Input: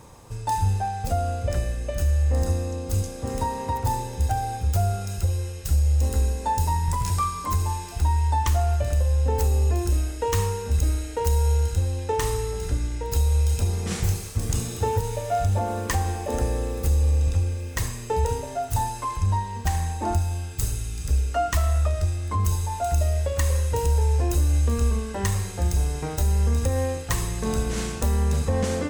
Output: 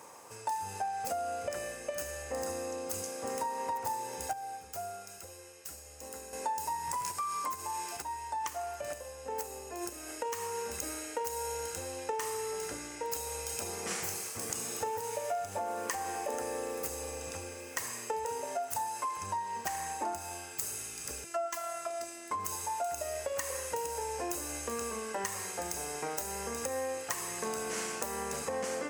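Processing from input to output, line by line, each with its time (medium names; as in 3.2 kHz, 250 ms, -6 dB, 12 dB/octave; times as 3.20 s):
4.33–6.33 s: gain -9 dB
7.11–10.59 s: compression, threshold -25 dBFS
21.24–22.31 s: robot voice 338 Hz
whole clip: Bessel high-pass 570 Hz, order 2; peaking EQ 3.7 kHz -9 dB 0.48 oct; compression 6:1, threshold -33 dBFS; trim +1 dB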